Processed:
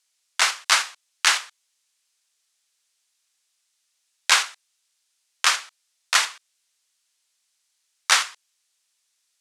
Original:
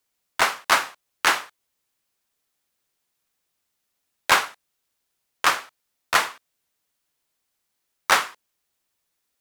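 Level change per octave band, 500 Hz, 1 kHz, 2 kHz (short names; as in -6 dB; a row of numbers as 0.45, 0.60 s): -9.5, -4.0, 0.0 dB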